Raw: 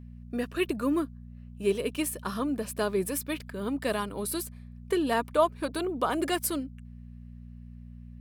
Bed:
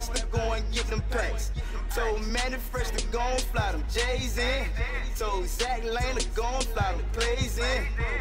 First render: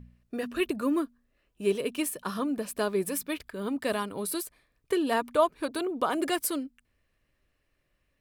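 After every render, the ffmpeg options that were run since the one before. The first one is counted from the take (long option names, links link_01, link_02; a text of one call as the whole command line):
ffmpeg -i in.wav -af "bandreject=frequency=60:width_type=h:width=4,bandreject=frequency=120:width_type=h:width=4,bandreject=frequency=180:width_type=h:width=4,bandreject=frequency=240:width_type=h:width=4" out.wav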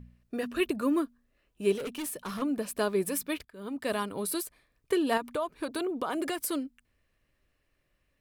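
ffmpeg -i in.wav -filter_complex "[0:a]asettb=1/sr,asplit=3[link_01][link_02][link_03];[link_01]atrim=end=1.784[link_04];[link_02]atrim=start=1.78:end=2.42,asetpts=PTS-STARTPTS,afade=type=in:duration=0.004:curve=qsin,afade=type=out:start_time=0.636:duration=0.004:curve=qsin,volume=33dB,asoftclip=hard,volume=-33dB[link_05];[link_03]atrim=start=2.416[link_06];[link_04][link_05]acrossfade=duration=0.004:curve1=hsin:curve2=qsin[link_07];[link_07][link_06]acrossfade=duration=0.004:curve1=qsin:curve2=hsin,asettb=1/sr,asplit=3[link_08][link_09][link_10];[link_08]atrim=end=5.174[link_11];[link_09]atrim=start=5.17:end=6.51,asetpts=PTS-STARTPTS,afade=type=in:duration=0.004:curve=qsin,afade=type=out:start_time=1.336:duration=0.004:curve=qsin,acompressor=threshold=-27dB:ratio=6:attack=3.2:release=140:knee=1:detection=peak[link_12];[link_10]atrim=start=6.506[link_13];[link_11][link_12]acrossfade=duration=0.004:curve1=hsin:curve2=qsin[link_14];[link_14][link_13]acrossfade=duration=0.004:curve1=qsin:curve2=hsin,asplit=2[link_15][link_16];[link_15]atrim=end=3.45,asetpts=PTS-STARTPTS,afade=type=out:start_time=3.446:duration=0.004:curve=hsin:silence=0.158489[link_17];[link_16]atrim=start=3.45,asetpts=PTS-STARTPTS,afade=type=in:duration=0.58:silence=0.158489[link_18];[link_17][link_18]concat=n=2:v=0:a=1" out.wav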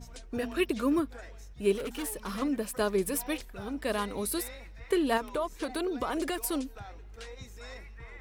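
ffmpeg -i in.wav -i bed.wav -filter_complex "[1:a]volume=-18dB[link_01];[0:a][link_01]amix=inputs=2:normalize=0" out.wav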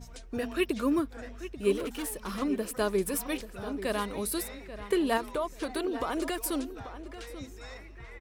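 ffmpeg -i in.wav -filter_complex "[0:a]asplit=2[link_01][link_02];[link_02]adelay=837,lowpass=frequency=3100:poles=1,volume=-12.5dB,asplit=2[link_03][link_04];[link_04]adelay=837,lowpass=frequency=3100:poles=1,volume=0.24,asplit=2[link_05][link_06];[link_06]adelay=837,lowpass=frequency=3100:poles=1,volume=0.24[link_07];[link_01][link_03][link_05][link_07]amix=inputs=4:normalize=0" out.wav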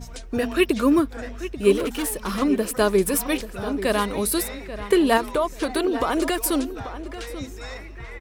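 ffmpeg -i in.wav -af "volume=9dB" out.wav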